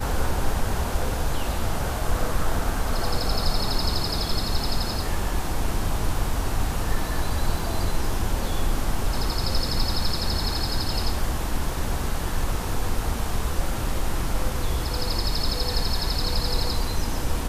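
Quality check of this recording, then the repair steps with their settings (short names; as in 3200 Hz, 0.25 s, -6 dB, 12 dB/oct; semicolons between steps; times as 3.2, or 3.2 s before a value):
7.59 gap 3.2 ms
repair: interpolate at 7.59, 3.2 ms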